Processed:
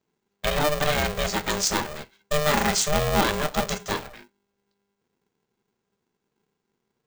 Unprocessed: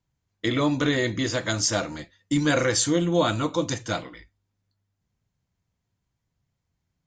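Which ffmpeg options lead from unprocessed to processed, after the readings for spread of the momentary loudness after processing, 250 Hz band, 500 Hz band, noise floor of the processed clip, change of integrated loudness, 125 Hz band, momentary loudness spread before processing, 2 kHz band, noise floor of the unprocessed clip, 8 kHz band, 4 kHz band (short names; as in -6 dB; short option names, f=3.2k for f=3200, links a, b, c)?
9 LU, -6.0 dB, 0.0 dB, -80 dBFS, 0.0 dB, -2.5 dB, 10 LU, +1.5 dB, -80 dBFS, +0.5 dB, +1.5 dB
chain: -af "aeval=exprs='val(0)*sgn(sin(2*PI*300*n/s))':c=same"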